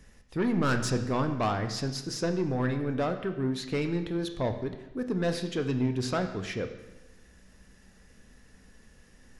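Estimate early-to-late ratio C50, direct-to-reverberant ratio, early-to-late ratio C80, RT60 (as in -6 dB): 9.5 dB, 6.5 dB, 11.0 dB, 1.0 s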